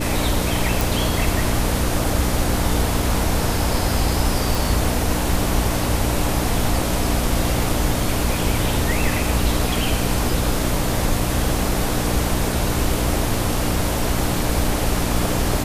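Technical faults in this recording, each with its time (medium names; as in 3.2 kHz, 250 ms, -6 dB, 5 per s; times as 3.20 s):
hum 60 Hz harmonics 5 -25 dBFS
0.81 s: pop
4.55 s: pop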